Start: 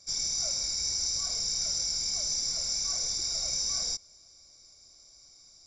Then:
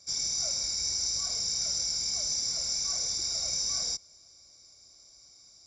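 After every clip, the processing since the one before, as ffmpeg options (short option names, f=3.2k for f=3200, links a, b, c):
-af "highpass=47"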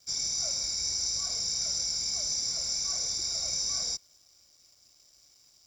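-af "aeval=exprs='sgn(val(0))*max(abs(val(0))-0.001,0)':c=same"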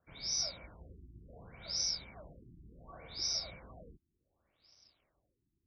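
-af "afftfilt=real='re*lt(b*sr/1024,370*pow(6200/370,0.5+0.5*sin(2*PI*0.68*pts/sr)))':imag='im*lt(b*sr/1024,370*pow(6200/370,0.5+0.5*sin(2*PI*0.68*pts/sr)))':win_size=1024:overlap=0.75,volume=-2dB"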